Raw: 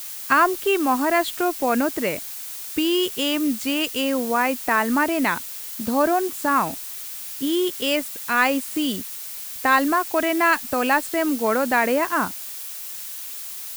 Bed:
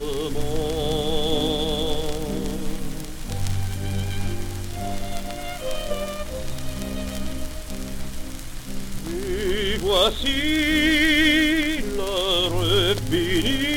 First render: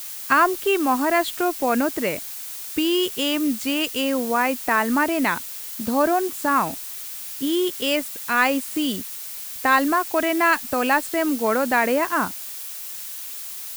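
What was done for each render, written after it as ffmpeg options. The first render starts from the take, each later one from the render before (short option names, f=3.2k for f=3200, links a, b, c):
-af anull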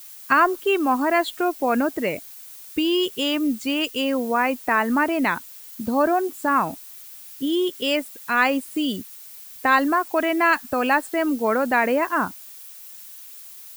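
-af "afftdn=nr=10:nf=-34"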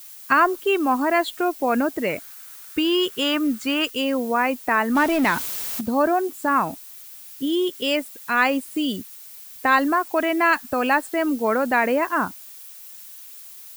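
-filter_complex "[0:a]asettb=1/sr,asplit=3[a][b][c];[a]atrim=end=2.094[d];[b]atrim=start=2.09:end=3.9,asetpts=PTS-STARTPTS,afade=t=in:d=0.004:c=qsin,afade=t=out:st=1.806:d=0.004:c=qsin,equalizer=f=1.4k:t=o:w=0.89:g=10.5[e];[c]atrim=start=3.896[f];[d][e]acrossfade=d=0.004:c1=hsin:c2=qsin[g];[g][f]acrossfade=d=0.004:c1=qsin:c2=hsin,asettb=1/sr,asplit=3[h][i][j];[h]atrim=end=4.954[k];[i]atrim=start=4.95:end=5.81,asetpts=PTS-STARTPTS,afade=t=in:d=0.004:c=qsin,afade=t=out:st=0.856:d=0.004:c=qsin,aeval=exprs='val(0)+0.5*0.0562*sgn(val(0))':c=same[l];[j]atrim=start=5.806[m];[k][l]acrossfade=d=0.004:c1=hsin:c2=qsin[n];[n][m]acrossfade=d=0.004:c1=qsin:c2=hsin"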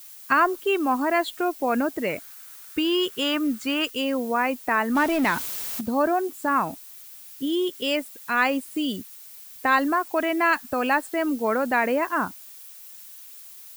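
-af "volume=-2.5dB"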